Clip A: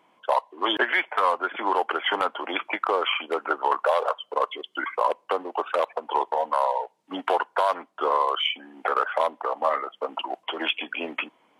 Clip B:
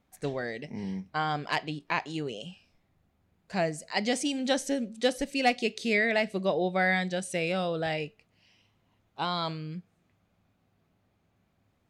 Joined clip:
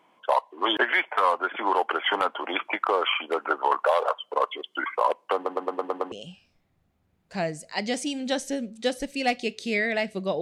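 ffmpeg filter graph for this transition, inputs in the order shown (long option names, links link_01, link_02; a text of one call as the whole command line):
ffmpeg -i cue0.wav -i cue1.wav -filter_complex "[0:a]apad=whole_dur=10.41,atrim=end=10.41,asplit=7[link_01][link_02][link_03][link_04][link_05][link_06][link_07];[link_01]atrim=end=5.462[link_08];[link_02]atrim=start=5.348:end=5.462[link_09];[link_03]atrim=start=5.348:end=5.462[link_10];[link_04]atrim=start=5.348:end=5.462[link_11];[link_05]atrim=start=5.348:end=5.462[link_12];[link_06]atrim=start=5.348:end=5.462[link_13];[link_07]atrim=start=5.348:end=5.462[link_14];[1:a]atrim=start=2.308:end=6.6[link_15];[link_08][link_09]acrossfade=duration=0.004:curve1=hsin:curve2=hsin[link_16];[link_16][link_10]acrossfade=duration=0.004:curve1=hsin:curve2=hsin[link_17];[link_17][link_11]acrossfade=duration=0.004:curve1=hsin:curve2=hsin[link_18];[link_18][link_12]acrossfade=duration=0.004:curve1=hsin:curve2=hsin[link_19];[link_19][link_13]acrossfade=duration=0.004:curve1=hsin:curve2=hsin[link_20];[link_20][link_14]acrossfade=duration=0.004:curve1=hsin:curve2=hsin[link_21];[link_21][link_15]acrossfade=duration=0.004:curve1=hsin:curve2=hsin" out.wav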